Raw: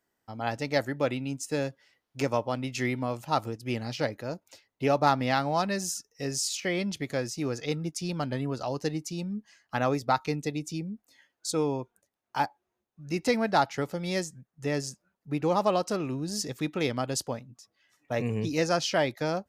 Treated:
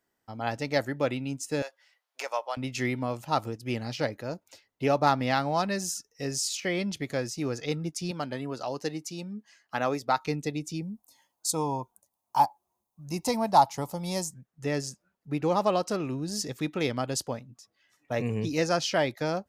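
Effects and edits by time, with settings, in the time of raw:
1.62–2.57 HPF 620 Hz 24 dB/oct
8.11–10.23 HPF 270 Hz 6 dB/oct
10.82–14.34 EQ curve 180 Hz 0 dB, 430 Hz -6 dB, 990 Hz +9 dB, 1500 Hz -12 dB, 11000 Hz +10 dB

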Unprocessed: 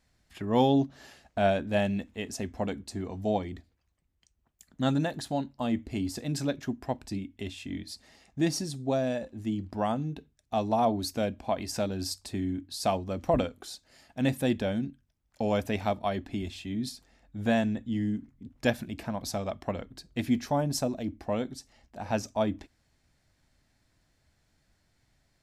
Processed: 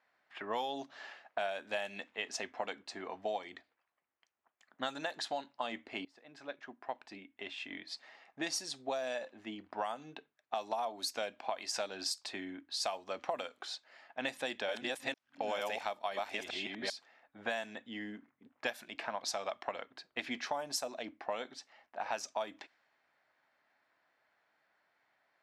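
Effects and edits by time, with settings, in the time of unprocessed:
6.05–7.74 fade in, from -23.5 dB
14.23–16.9 reverse delay 0.455 s, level 0 dB
whole clip: HPF 810 Hz 12 dB/oct; low-pass opened by the level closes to 1700 Hz, open at -29.5 dBFS; compressor 10:1, threshold -39 dBFS; gain +6 dB

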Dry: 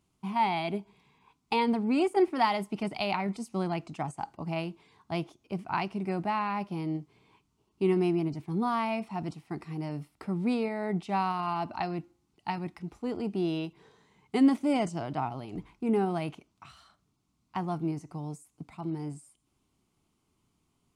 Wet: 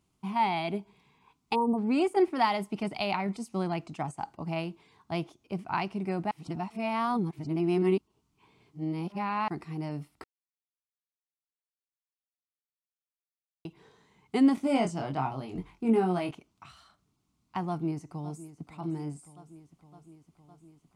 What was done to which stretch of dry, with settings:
1.55–1.78 spectral delete 1200–8200 Hz
6.31–9.48 reverse
10.24–13.65 mute
14.55–16.31 doubler 22 ms -4 dB
17.68–18.71 echo throw 0.56 s, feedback 75%, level -15 dB

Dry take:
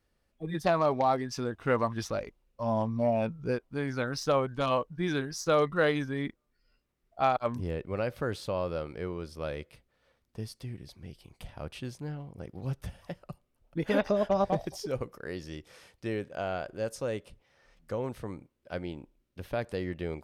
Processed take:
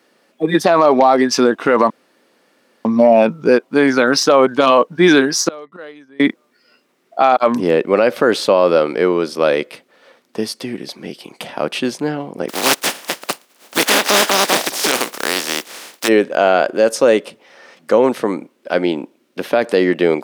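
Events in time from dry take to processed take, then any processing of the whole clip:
1.9–2.85 room tone
5.48–6.2 flipped gate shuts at -28 dBFS, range -31 dB
12.48–16.07 spectral contrast lowered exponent 0.28
whole clip: HPF 230 Hz 24 dB/oct; high shelf 9200 Hz -7 dB; maximiser +23.5 dB; gain -1 dB

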